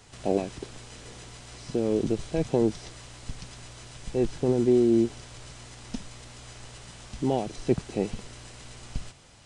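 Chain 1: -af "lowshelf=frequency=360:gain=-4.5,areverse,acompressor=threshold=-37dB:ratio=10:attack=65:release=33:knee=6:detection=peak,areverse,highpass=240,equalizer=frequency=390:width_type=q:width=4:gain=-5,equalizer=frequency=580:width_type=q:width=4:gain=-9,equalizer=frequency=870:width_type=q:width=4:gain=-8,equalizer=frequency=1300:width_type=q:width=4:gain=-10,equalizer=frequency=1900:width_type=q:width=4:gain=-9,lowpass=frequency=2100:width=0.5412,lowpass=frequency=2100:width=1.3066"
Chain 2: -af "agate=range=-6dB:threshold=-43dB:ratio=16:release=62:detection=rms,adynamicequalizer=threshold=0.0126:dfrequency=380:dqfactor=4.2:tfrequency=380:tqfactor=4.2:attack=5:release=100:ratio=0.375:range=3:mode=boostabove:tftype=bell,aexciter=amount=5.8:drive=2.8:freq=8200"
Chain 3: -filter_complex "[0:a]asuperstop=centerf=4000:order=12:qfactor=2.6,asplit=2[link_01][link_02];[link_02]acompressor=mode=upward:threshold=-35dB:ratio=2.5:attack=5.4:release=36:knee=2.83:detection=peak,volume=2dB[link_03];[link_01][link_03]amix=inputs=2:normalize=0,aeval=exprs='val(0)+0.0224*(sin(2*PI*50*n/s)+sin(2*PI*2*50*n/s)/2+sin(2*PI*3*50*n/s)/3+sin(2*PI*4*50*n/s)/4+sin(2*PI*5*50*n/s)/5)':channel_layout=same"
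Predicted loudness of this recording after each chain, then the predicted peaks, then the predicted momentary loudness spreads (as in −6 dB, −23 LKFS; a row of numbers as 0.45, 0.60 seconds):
−41.5, −23.5, −21.0 LKFS; −24.0, −7.0, −2.5 dBFS; 20, 23, 16 LU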